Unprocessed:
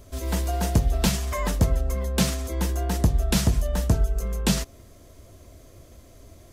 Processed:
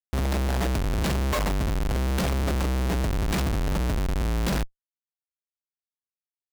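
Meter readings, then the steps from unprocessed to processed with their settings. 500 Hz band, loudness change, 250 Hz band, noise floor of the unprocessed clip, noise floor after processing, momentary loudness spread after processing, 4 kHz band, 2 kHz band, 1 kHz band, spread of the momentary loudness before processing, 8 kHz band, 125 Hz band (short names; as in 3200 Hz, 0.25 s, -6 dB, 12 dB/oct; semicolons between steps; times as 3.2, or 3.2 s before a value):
0.0 dB, -1.5 dB, -1.5 dB, -50 dBFS, under -85 dBFS, 2 LU, -3.0 dB, +2.0 dB, +1.5 dB, 5 LU, -7.0 dB, -2.0 dB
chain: median filter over 3 samples; compressor 8:1, threshold -22 dBFS, peak gain reduction 8.5 dB; Schmitt trigger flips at -32.5 dBFS; vibrato 0.96 Hz 33 cents; gain +4 dB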